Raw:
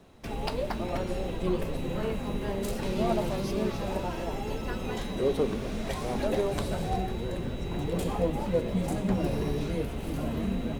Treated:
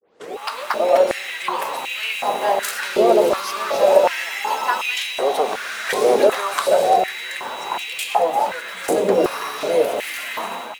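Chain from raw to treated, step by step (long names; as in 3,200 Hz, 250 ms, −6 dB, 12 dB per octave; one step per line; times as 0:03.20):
turntable start at the beginning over 0.36 s
high-shelf EQ 5,700 Hz +4.5 dB
in parallel at −2 dB: brickwall limiter −21.5 dBFS, peak gain reduction 7 dB
on the sum: automatic gain control gain up to 16.5 dB
high-pass on a step sequencer 2.7 Hz 450–2,500 Hz
level −5 dB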